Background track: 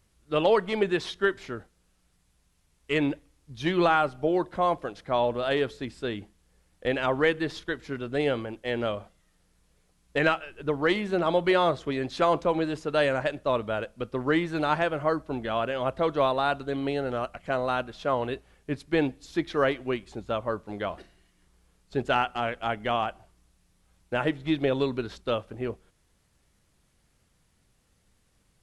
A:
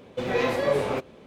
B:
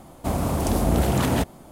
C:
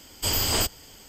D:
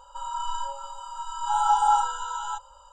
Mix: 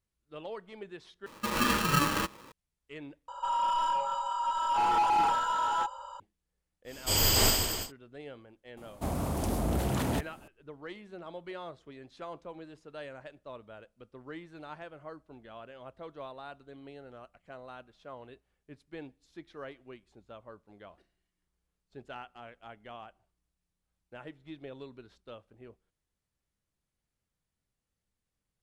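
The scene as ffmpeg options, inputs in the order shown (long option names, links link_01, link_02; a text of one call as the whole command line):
ffmpeg -i bed.wav -i cue0.wav -i cue1.wav -i cue2.wav -i cue3.wav -filter_complex "[0:a]volume=-19.5dB[link_01];[1:a]aeval=exprs='val(0)*sgn(sin(2*PI*720*n/s))':channel_layout=same[link_02];[4:a]asplit=2[link_03][link_04];[link_04]highpass=frequency=720:poles=1,volume=26dB,asoftclip=type=tanh:threshold=-10.5dB[link_05];[link_03][link_05]amix=inputs=2:normalize=0,lowpass=frequency=1300:poles=1,volume=-6dB[link_06];[3:a]aecho=1:1:40|92|159.6|247.5|361.7|510.2:0.794|0.631|0.501|0.398|0.316|0.251[link_07];[2:a]aeval=exprs='0.422*sin(PI/2*1.58*val(0)/0.422)':channel_layout=same[link_08];[link_01]asplit=3[link_09][link_10][link_11];[link_09]atrim=end=1.264[link_12];[link_02]atrim=end=1.26,asetpts=PTS-STARTPTS,volume=-3dB[link_13];[link_10]atrim=start=2.516:end=3.284[link_14];[link_06]atrim=end=2.92,asetpts=PTS-STARTPTS,volume=-8dB[link_15];[link_11]atrim=start=6.196[link_16];[link_07]atrim=end=1.08,asetpts=PTS-STARTPTS,volume=-4dB,afade=type=in:duration=0.1,afade=type=out:start_time=0.98:duration=0.1,adelay=6840[link_17];[link_08]atrim=end=1.71,asetpts=PTS-STARTPTS,volume=-15.5dB,afade=type=in:duration=0.004:curve=hsin,afade=type=out:start_time=1.706:duration=0.004:curve=hsin,adelay=8770[link_18];[link_12][link_13]acrossfade=duration=0.004:curve1=hsin:curve2=hsin[link_19];[link_19][link_14]acrossfade=duration=0.004:curve1=hsin:curve2=hsin[link_20];[link_20][link_15]acrossfade=duration=0.004:curve1=hsin:curve2=hsin[link_21];[link_21][link_16]acrossfade=duration=0.004:curve1=hsin:curve2=hsin[link_22];[link_22][link_17][link_18]amix=inputs=3:normalize=0" out.wav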